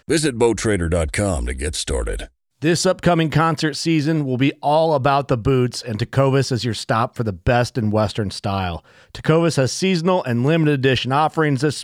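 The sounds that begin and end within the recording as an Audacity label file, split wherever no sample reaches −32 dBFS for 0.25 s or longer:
2.620000	8.790000	sound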